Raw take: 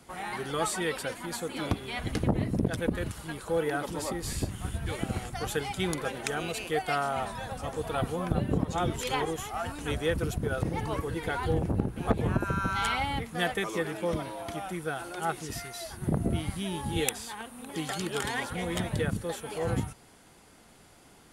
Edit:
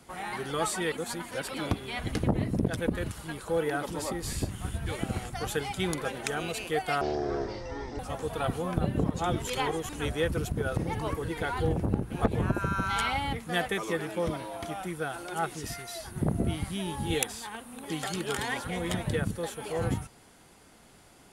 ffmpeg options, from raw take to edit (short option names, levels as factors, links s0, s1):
-filter_complex "[0:a]asplit=6[s0][s1][s2][s3][s4][s5];[s0]atrim=end=0.922[s6];[s1]atrim=start=0.918:end=1.542,asetpts=PTS-STARTPTS,areverse[s7];[s2]atrim=start=1.538:end=7.014[s8];[s3]atrim=start=7.01:end=7.53,asetpts=PTS-STARTPTS,asetrate=23373,aresample=44100[s9];[s4]atrim=start=7.526:end=9.432[s10];[s5]atrim=start=9.748[s11];[s6][s7]acrossfade=d=0.004:c1=hsin:c2=hsin[s12];[s12][s8]acrossfade=d=0.004:c1=hsin:c2=hsin[s13];[s13][s9]acrossfade=d=0.004:c1=hsin:c2=hsin[s14];[s14][s10]acrossfade=d=0.004:c1=hsin:c2=hsin[s15];[s15][s11]acrossfade=d=0.004:c1=hsin:c2=hsin"